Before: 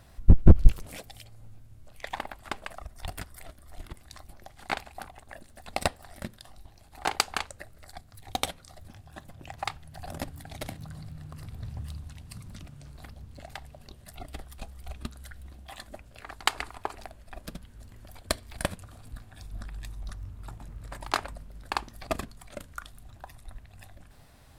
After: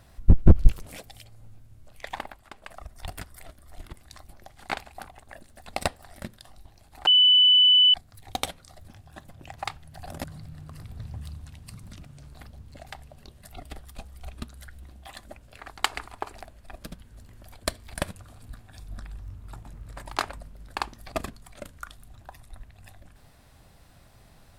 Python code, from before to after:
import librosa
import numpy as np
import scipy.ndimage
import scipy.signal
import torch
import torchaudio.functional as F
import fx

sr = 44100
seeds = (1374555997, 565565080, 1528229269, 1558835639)

y = fx.edit(x, sr, fx.fade_down_up(start_s=2.21, length_s=0.61, db=-11.0, fade_s=0.29),
    fx.bleep(start_s=7.07, length_s=0.87, hz=2990.0, db=-13.5),
    fx.cut(start_s=10.24, length_s=0.63),
    fx.cut(start_s=19.82, length_s=0.32), tone=tone)